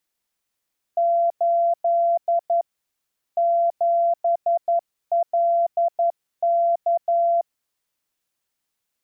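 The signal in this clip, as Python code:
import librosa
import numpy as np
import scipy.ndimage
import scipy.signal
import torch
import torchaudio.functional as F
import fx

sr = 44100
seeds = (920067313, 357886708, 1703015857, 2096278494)

y = fx.morse(sr, text='8 7LK', wpm=11, hz=683.0, level_db=-16.0)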